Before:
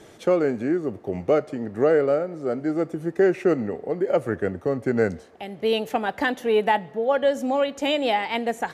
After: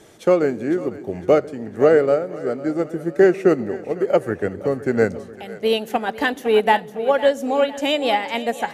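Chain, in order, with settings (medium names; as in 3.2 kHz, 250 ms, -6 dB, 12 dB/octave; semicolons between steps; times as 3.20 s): treble shelf 6.3 kHz +6.5 dB; on a send: two-band feedback delay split 430 Hz, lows 145 ms, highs 505 ms, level -12 dB; on the sum: upward expansion 1.5:1, over -28 dBFS; trim +5.5 dB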